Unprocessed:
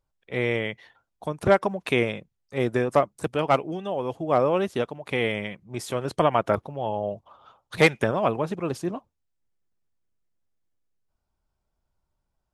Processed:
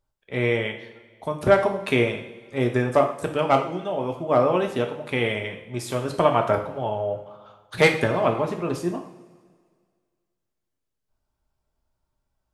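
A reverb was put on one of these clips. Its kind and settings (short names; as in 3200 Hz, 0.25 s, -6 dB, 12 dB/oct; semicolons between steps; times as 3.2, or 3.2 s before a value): two-slope reverb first 0.53 s, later 1.9 s, from -16 dB, DRR 3 dB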